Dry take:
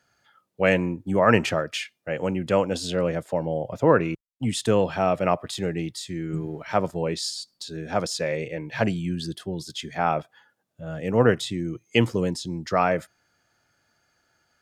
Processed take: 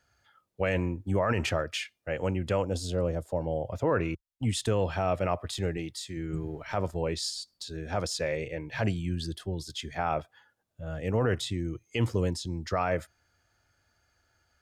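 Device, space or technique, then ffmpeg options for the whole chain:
car stereo with a boomy subwoofer: -filter_complex "[0:a]asettb=1/sr,asplit=3[link_01][link_02][link_03];[link_01]atrim=end=5.774[link_04];[link_02]atrim=start=5.77:end=6.17,asetpts=PTS-STARTPTS,afade=type=in:duration=0.004:curve=qsin,afade=type=out:start_time=0.396:duration=0.004:curve=qsin,highpass=frequency=180:poles=1[link_05];[link_03]atrim=start=6.166[link_06];[link_04][link_05]acrossfade=duration=0.004:curve1=hsin:curve2=qsin[link_07];[link_07][link_06]acrossfade=duration=0.004:curve1=qsin:curve2=hsin,lowshelf=frequency=110:width_type=q:width=1.5:gain=10.5,alimiter=limit=-12.5dB:level=0:latency=1:release=25,asettb=1/sr,asplit=3[link_08][link_09][link_10];[link_08]atrim=end=2.624[link_11];[link_09]atrim=start=2.62:end=3.41,asetpts=PTS-STARTPTS,afade=type=in:duration=0.004:curve=qsin,afade=type=out:start_time=0.786:duration=0.004:curve=qsin,equalizer=frequency=2100:width_type=o:width=1.6:gain=-11.5[link_12];[link_10]atrim=start=3.406[link_13];[link_11][link_12]acrossfade=duration=0.004:curve1=hsin:curve2=qsin[link_14];[link_14][link_13]acrossfade=duration=0.004:curve1=qsin:curve2=hsin,volume=-3.5dB"

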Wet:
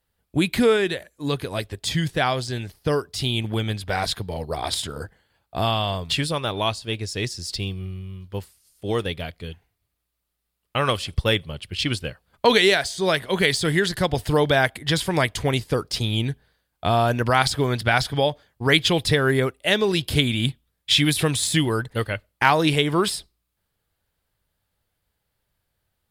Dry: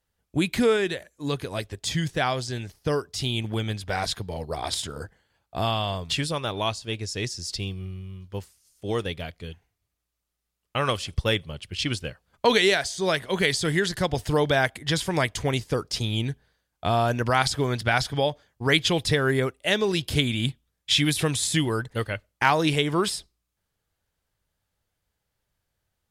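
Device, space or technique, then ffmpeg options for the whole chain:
exciter from parts: -filter_complex "[0:a]asplit=2[link_01][link_02];[link_02]highpass=frequency=4700:width=0.5412,highpass=frequency=4700:width=1.3066,asoftclip=type=tanh:threshold=-27.5dB,highpass=3900,volume=-6dB[link_03];[link_01][link_03]amix=inputs=2:normalize=0,volume=3dB"

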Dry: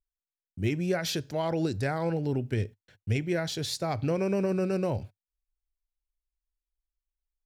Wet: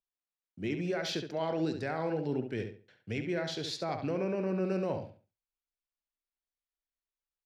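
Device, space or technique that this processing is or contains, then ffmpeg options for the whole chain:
DJ mixer with the lows and highs turned down: -filter_complex "[0:a]acrossover=split=160 5800:gain=0.141 1 0.158[link_01][link_02][link_03];[link_01][link_02][link_03]amix=inputs=3:normalize=0,alimiter=limit=-22dB:level=0:latency=1:release=17,asettb=1/sr,asplit=3[link_04][link_05][link_06];[link_04]atrim=end=4.154[link_07];[link_05]atrim=start=4.15:end=4.65,asetpts=PTS-STARTPTS,afade=type=in:duration=0.004:curve=qsin,afade=type=out:start_time=0.496:duration=0.004:curve=qsin,highshelf=frequency=5500:gain=-9.5[link_08];[link_06]atrim=start=4.646[link_09];[link_07][link_08]acrossfade=duration=0.004:curve1=hsin:curve2=qsin[link_10];[link_10][link_09]acrossfade=duration=0.004:curve1=qsin:curve2=hsin,asplit=2[link_11][link_12];[link_12]adelay=69,lowpass=frequency=4000:poles=1,volume=-6.5dB,asplit=2[link_13][link_14];[link_14]adelay=69,lowpass=frequency=4000:poles=1,volume=0.28,asplit=2[link_15][link_16];[link_16]adelay=69,lowpass=frequency=4000:poles=1,volume=0.28,asplit=2[link_17][link_18];[link_18]adelay=69,lowpass=frequency=4000:poles=1,volume=0.28[link_19];[link_11][link_13][link_15][link_17][link_19]amix=inputs=5:normalize=0,volume=-2.5dB"

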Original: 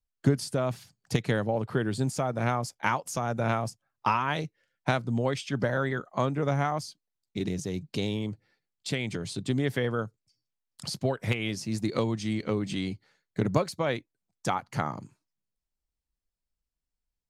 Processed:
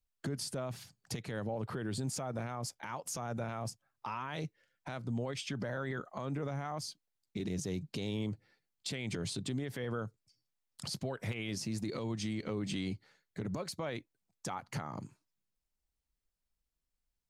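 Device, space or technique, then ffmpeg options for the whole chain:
stacked limiters: -af "alimiter=limit=-15dB:level=0:latency=1:release=342,alimiter=limit=-22dB:level=0:latency=1:release=121,alimiter=level_in=4.5dB:limit=-24dB:level=0:latency=1:release=62,volume=-4.5dB"

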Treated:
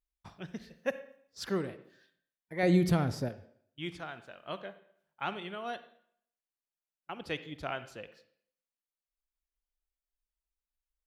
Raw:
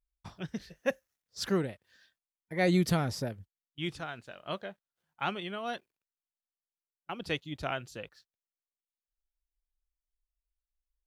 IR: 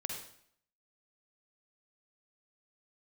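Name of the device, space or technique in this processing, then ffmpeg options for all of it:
filtered reverb send: -filter_complex "[0:a]asplit=2[link_01][link_02];[link_02]highpass=200,lowpass=3500[link_03];[1:a]atrim=start_sample=2205[link_04];[link_03][link_04]afir=irnorm=-1:irlink=0,volume=-7dB[link_05];[link_01][link_05]amix=inputs=2:normalize=0,asettb=1/sr,asplit=3[link_06][link_07][link_08];[link_06]atrim=end=2.634[link_09];[link_07]atrim=start=2.63:end=3.29,asetpts=PTS-STARTPTS,afade=type=in:duration=0.004:curve=qsin,afade=type=out:start_time=0.656:duration=0.004:curve=qsin,lowshelf=frequency=360:gain=7.5[link_10];[link_08]atrim=start=3.286[link_11];[link_09][link_10]acrossfade=duration=0.004:curve1=hsin:curve2=qsin[link_12];[link_12][link_11]acrossfade=duration=0.004:curve1=qsin:curve2=hsin,volume=-5dB"

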